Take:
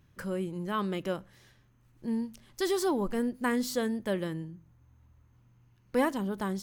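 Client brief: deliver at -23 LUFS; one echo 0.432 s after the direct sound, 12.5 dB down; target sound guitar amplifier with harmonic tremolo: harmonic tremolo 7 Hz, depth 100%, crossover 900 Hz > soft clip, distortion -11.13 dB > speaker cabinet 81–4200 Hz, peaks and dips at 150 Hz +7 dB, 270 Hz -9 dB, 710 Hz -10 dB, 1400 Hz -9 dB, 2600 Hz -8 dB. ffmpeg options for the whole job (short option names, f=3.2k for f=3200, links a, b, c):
-filter_complex "[0:a]aecho=1:1:432:0.237,acrossover=split=900[a][b];[a]aeval=exprs='val(0)*(1-1/2+1/2*cos(2*PI*7*n/s))':c=same[c];[b]aeval=exprs='val(0)*(1-1/2-1/2*cos(2*PI*7*n/s))':c=same[d];[c][d]amix=inputs=2:normalize=0,asoftclip=threshold=-29.5dB,highpass=81,equalizer=f=150:t=q:w=4:g=7,equalizer=f=270:t=q:w=4:g=-9,equalizer=f=710:t=q:w=4:g=-10,equalizer=f=1.4k:t=q:w=4:g=-9,equalizer=f=2.6k:t=q:w=4:g=-8,lowpass=f=4.2k:w=0.5412,lowpass=f=4.2k:w=1.3066,volume=18dB"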